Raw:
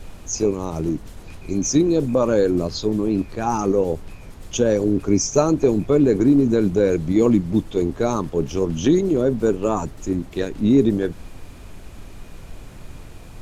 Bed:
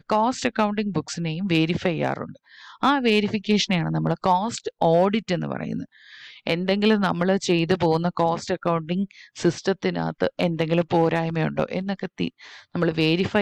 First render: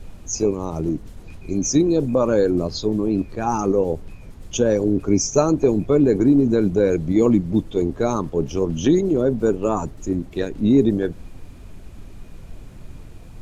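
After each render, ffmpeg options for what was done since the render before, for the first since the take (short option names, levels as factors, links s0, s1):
-af "afftdn=nr=6:nf=-40"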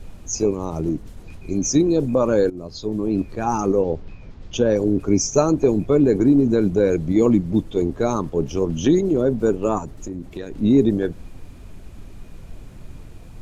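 -filter_complex "[0:a]asettb=1/sr,asplit=3[s0][s1][s2];[s0]atrim=end=3.824[s3];[s1]atrim=start=3.82:end=4.76,asetpts=PTS-STARTPTS,afade=t=in:d=0.004:c=qsin,afade=t=out:st=0.936:d=0.004:c=qsin,lowpass=f=5500:w=0.5412,lowpass=f=5500:w=1.3066[s4];[s2]atrim=start=4.756[s5];[s3][s4]acrossfade=d=0.004:c1=hsin:c2=qsin[s6];[s6][s5]acrossfade=d=0.004:c1=qsin:c2=hsin,asettb=1/sr,asplit=3[s7][s8][s9];[s7]atrim=end=9.784[s10];[s8]atrim=start=9.78:end=10.61,asetpts=PTS-STARTPTS,afade=t=in:d=0.004:c=qsin,afade=t=out:st=0.826:d=0.004:c=qsin,acompressor=threshold=0.0501:ratio=6:attack=3.2:release=140:knee=1:detection=peak[s11];[s9]atrim=start=10.606[s12];[s10][s11]acrossfade=d=0.004:c1=hsin:c2=qsin[s13];[s13][s12]acrossfade=d=0.004:c1=qsin:c2=hsin,asplit=2[s14][s15];[s14]atrim=end=2.5,asetpts=PTS-STARTPTS,afade=t=out:st=2.496:d=0.004:c=hsin:silence=0.125893[s16];[s15]atrim=start=2.5,asetpts=PTS-STARTPTS,afade=t=in:d=0.68:silence=0.125893[s17];[s16][s17]concat=n=2:v=0:a=1"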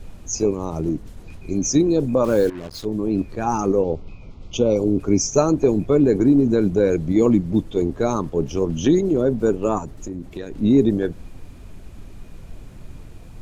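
-filter_complex "[0:a]asettb=1/sr,asplit=3[s0][s1][s2];[s0]atrim=end=2.244[s3];[s1]atrim=start=2.24:end=2.85,asetpts=PTS-STARTPTS,afade=t=in:d=0.004:c=qsin,afade=t=out:st=0.606:d=0.004:c=qsin,acrusher=bits=5:mix=0:aa=0.5[s4];[s2]atrim=start=2.846[s5];[s3][s4]acrossfade=d=0.004:c1=hsin:c2=qsin[s6];[s6][s5]acrossfade=d=0.004:c1=qsin:c2=hsin,asettb=1/sr,asplit=3[s7][s8][s9];[s7]atrim=end=3.834[s10];[s8]atrim=start=3.83:end=5,asetpts=PTS-STARTPTS,afade=t=in:d=0.004:c=qsin,afade=t=out:st=1.166:d=0.004:c=qsin,asuperstop=centerf=1700:order=8:qfactor=2.9[s11];[s9]atrim=start=4.996[s12];[s10][s11]acrossfade=d=0.004:c1=hsin:c2=qsin[s13];[s13][s12]acrossfade=d=0.004:c1=qsin:c2=hsin"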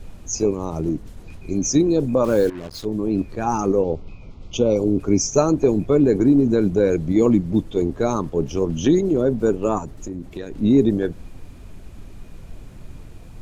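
-af anull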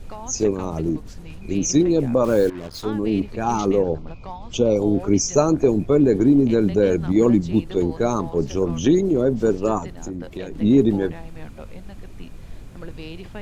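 -filter_complex "[1:a]volume=0.15[s0];[0:a][s0]amix=inputs=2:normalize=0"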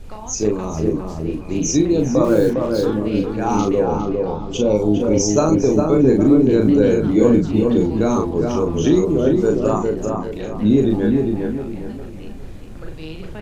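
-filter_complex "[0:a]asplit=2[s0][s1];[s1]adelay=38,volume=0.631[s2];[s0][s2]amix=inputs=2:normalize=0,asplit=2[s3][s4];[s4]adelay=406,lowpass=f=1600:p=1,volume=0.708,asplit=2[s5][s6];[s6]adelay=406,lowpass=f=1600:p=1,volume=0.38,asplit=2[s7][s8];[s8]adelay=406,lowpass=f=1600:p=1,volume=0.38,asplit=2[s9][s10];[s10]adelay=406,lowpass=f=1600:p=1,volume=0.38,asplit=2[s11][s12];[s12]adelay=406,lowpass=f=1600:p=1,volume=0.38[s13];[s5][s7][s9][s11][s13]amix=inputs=5:normalize=0[s14];[s3][s14]amix=inputs=2:normalize=0"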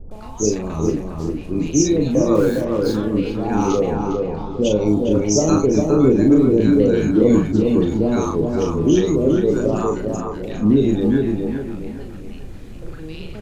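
-filter_complex "[0:a]acrossover=split=760[s0][s1];[s1]adelay=110[s2];[s0][s2]amix=inputs=2:normalize=0"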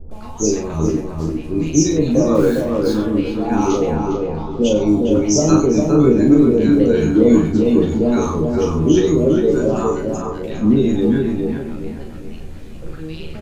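-filter_complex "[0:a]asplit=2[s0][s1];[s1]adelay=13,volume=0.668[s2];[s0][s2]amix=inputs=2:normalize=0,aecho=1:1:94:0.224"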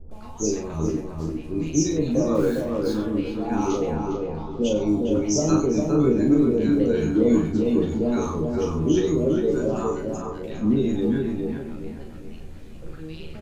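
-af "volume=0.447"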